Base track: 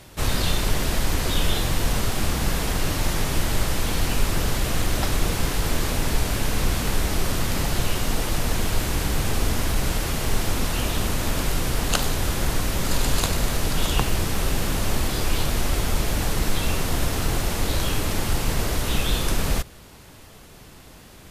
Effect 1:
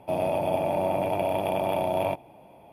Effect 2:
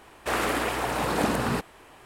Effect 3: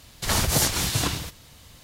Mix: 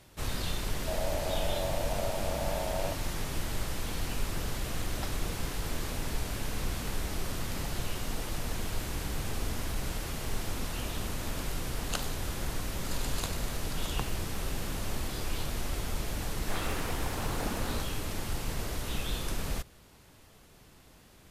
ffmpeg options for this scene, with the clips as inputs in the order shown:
-filter_complex "[0:a]volume=0.282[s0];[1:a]lowshelf=f=390:t=q:w=3:g=-8,atrim=end=2.72,asetpts=PTS-STARTPTS,volume=0.224,afade=t=in:d=0.004:c=hsin,afade=t=out:st=2.716:d=0.004:c=hsin,adelay=790[s1];[2:a]atrim=end=2.05,asetpts=PTS-STARTPTS,volume=0.251,afade=t=in:d=0.004:c=hsin,afade=t=out:st=2.046:d=0.004:c=hsin,adelay=16220[s2];[s0][s1][s2]amix=inputs=3:normalize=0"

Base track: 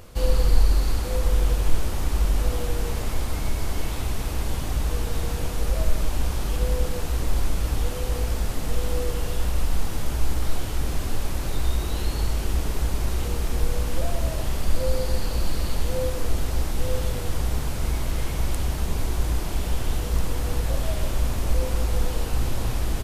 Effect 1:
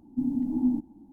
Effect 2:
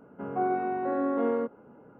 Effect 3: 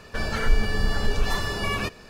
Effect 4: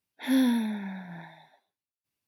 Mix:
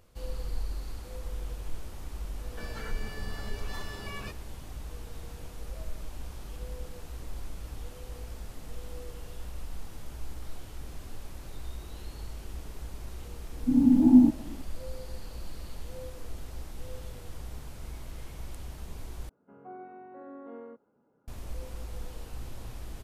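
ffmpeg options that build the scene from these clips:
-filter_complex "[0:a]volume=0.158[s0];[1:a]dynaudnorm=f=160:g=3:m=3.76[s1];[s0]asplit=2[s2][s3];[s2]atrim=end=19.294[s4];[2:a]atrim=end=1.99,asetpts=PTS-STARTPTS,volume=0.133[s5];[s3]atrim=start=21.276[s6];[3:a]atrim=end=2.09,asetpts=PTS-STARTPTS,volume=0.2,afade=t=in:d=0.004:c=hsin,afade=t=out:st=2.086:d=0.004:c=hsin,adelay=2430[s7];[s1]atrim=end=1.12,asetpts=PTS-STARTPTS,volume=0.708,afade=t=in:d=0.004:c=hsin,afade=t=out:st=1.116:d=0.004:c=hsin,adelay=13500[s8];[s4][s5]acrossfade=d=0.004:c1=hsin:c2=hsin[s9];[s9][s6]acrossfade=d=0.004:c1=hsin:c2=hsin[s10];[s10][s7][s8]amix=inputs=3:normalize=0"

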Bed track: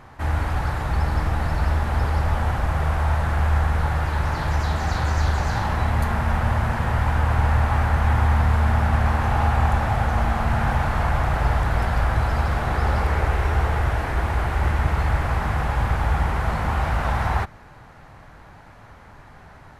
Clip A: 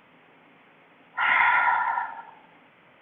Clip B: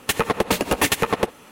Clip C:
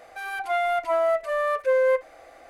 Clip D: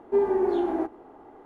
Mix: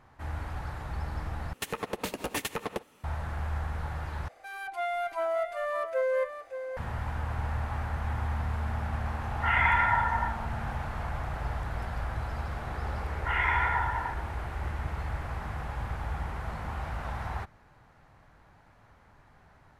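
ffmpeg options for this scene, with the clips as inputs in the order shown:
-filter_complex "[1:a]asplit=2[s0][s1];[0:a]volume=0.224[s2];[3:a]aecho=1:1:573:0.335[s3];[s0]aecho=1:1:4.4:0.59[s4];[s2]asplit=3[s5][s6][s7];[s5]atrim=end=1.534[s8];[2:a]atrim=end=1.51,asetpts=PTS-STARTPTS,volume=0.211[s9];[s6]atrim=start=3.036:end=4.284[s10];[s3]atrim=end=2.49,asetpts=PTS-STARTPTS,volume=0.422[s11];[s7]atrim=start=6.766[s12];[s4]atrim=end=3.01,asetpts=PTS-STARTPTS,volume=0.531,afade=t=in:d=0.004:c=hsin,afade=t=out:st=3.006:d=0.004:c=hsin,adelay=8250[s13];[s1]atrim=end=3.01,asetpts=PTS-STARTPTS,volume=0.447,afade=t=in:d=0.004:c=hsin,afade=t=out:st=3.006:d=0.004:c=hsin,adelay=12080[s14];[s8][s9]acrossfade=d=0.004:c1=hsin:c2=hsin[s15];[s15][s10]acrossfade=d=0.004:c1=hsin:c2=hsin[s16];[s16][s11]acrossfade=d=0.004:c1=hsin:c2=hsin[s17];[s17][s12]acrossfade=d=0.004:c1=hsin:c2=hsin[s18];[s18][s13][s14]amix=inputs=3:normalize=0"

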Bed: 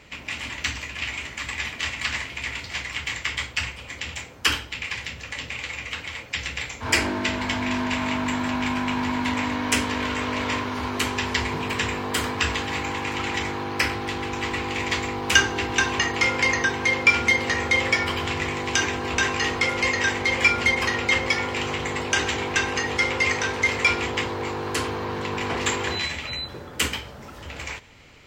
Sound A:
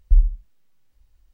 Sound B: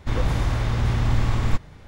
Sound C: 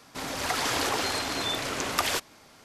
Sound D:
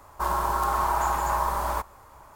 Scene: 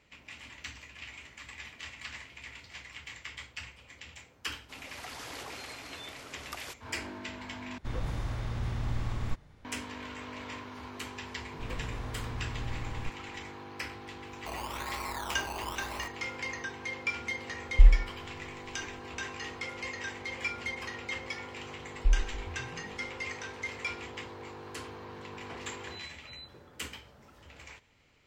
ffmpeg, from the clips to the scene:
-filter_complex "[2:a]asplit=2[s0][s1];[1:a]asplit=2[s2][s3];[0:a]volume=0.158[s4];[4:a]acrusher=samples=19:mix=1:aa=0.000001:lfo=1:lforange=11.4:lforate=1[s5];[s3]asplit=8[s6][s7][s8][s9][s10][s11][s12][s13];[s7]adelay=131,afreqshift=-40,volume=0.2[s14];[s8]adelay=262,afreqshift=-80,volume=0.13[s15];[s9]adelay=393,afreqshift=-120,volume=0.0841[s16];[s10]adelay=524,afreqshift=-160,volume=0.055[s17];[s11]adelay=655,afreqshift=-200,volume=0.0355[s18];[s12]adelay=786,afreqshift=-240,volume=0.0232[s19];[s13]adelay=917,afreqshift=-280,volume=0.015[s20];[s6][s14][s15][s16][s17][s18][s19][s20]amix=inputs=8:normalize=0[s21];[s4]asplit=2[s22][s23];[s22]atrim=end=7.784[s24];[s0]atrim=end=1.87,asetpts=PTS-STARTPTS,volume=0.251[s25];[s23]atrim=start=9.646[s26];[3:a]atrim=end=2.64,asetpts=PTS-STARTPTS,volume=0.158,afade=t=in:d=0.004:c=hsin,afade=t=out:st=2.636:d=0.004:c=hsin,adelay=4540[s27];[s1]atrim=end=1.87,asetpts=PTS-STARTPTS,volume=0.15,afade=t=in:d=0.004:c=hsin,afade=t=out:st=1.866:d=0.004:c=hsin,adelay=11530[s28];[s5]atrim=end=2.35,asetpts=PTS-STARTPTS,volume=0.2,afade=t=in:d=0.004:c=hsin,afade=t=out:st=2.346:d=0.004:c=hsin,adelay=14260[s29];[s2]atrim=end=1.33,asetpts=PTS-STARTPTS,volume=0.794,afade=t=in:d=0.004:c=hsin,afade=t=out:st=1.326:d=0.004:c=hsin,adelay=17680[s30];[s21]atrim=end=1.33,asetpts=PTS-STARTPTS,volume=0.316,afade=t=in:d=0.004:c=hsin,afade=t=out:st=1.326:d=0.004:c=hsin,adelay=21940[s31];[s24][s25]acrossfade=d=0.004:c1=hsin:c2=hsin[s32];[s32][s26]acrossfade=d=0.004:c1=hsin:c2=hsin[s33];[s33][s27][s28][s29][s30][s31]amix=inputs=6:normalize=0"

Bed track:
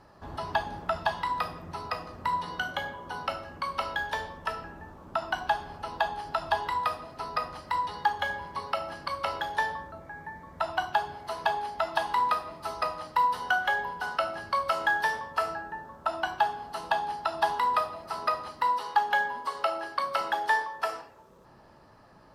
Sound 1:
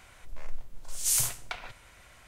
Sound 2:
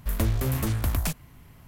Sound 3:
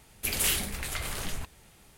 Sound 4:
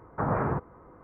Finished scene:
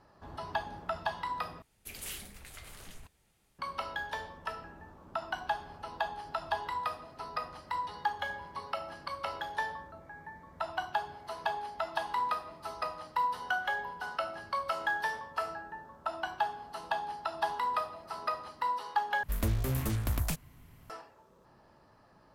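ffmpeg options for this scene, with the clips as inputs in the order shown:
-filter_complex "[0:a]volume=0.501,asplit=3[s0][s1][s2];[s0]atrim=end=1.624[s3];[3:a]atrim=end=1.97,asetpts=PTS-STARTPTS,volume=0.178[s4];[s1]atrim=start=3.586:end=19.234[s5];[2:a]atrim=end=1.67,asetpts=PTS-STARTPTS,volume=0.531[s6];[s2]atrim=start=20.896[s7];[s3][s4]acrossfade=d=0.004:c1=hsin:c2=hsin[s8];[s8][s5]acrossfade=d=0.004:c1=hsin:c2=hsin[s9];[s9][s6]acrossfade=d=0.004:c1=hsin:c2=hsin[s10];[s10][s7]acrossfade=d=0.004:c1=hsin:c2=hsin"

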